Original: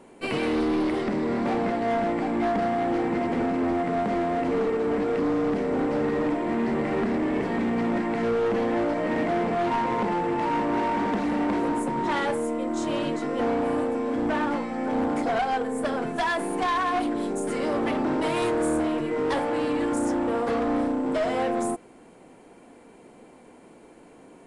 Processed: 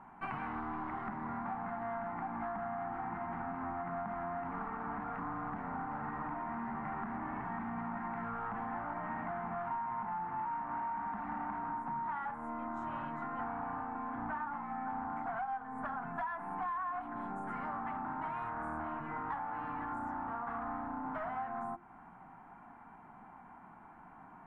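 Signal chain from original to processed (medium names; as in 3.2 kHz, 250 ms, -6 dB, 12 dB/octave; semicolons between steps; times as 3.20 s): FFT filter 190 Hz 0 dB, 510 Hz -22 dB, 780 Hz +6 dB, 1.4 kHz +6 dB, 4.4 kHz -27 dB; compression, threshold -35 dBFS, peak gain reduction 16.5 dB; hum notches 50/100/150/200/250/300/350 Hz; trim -2 dB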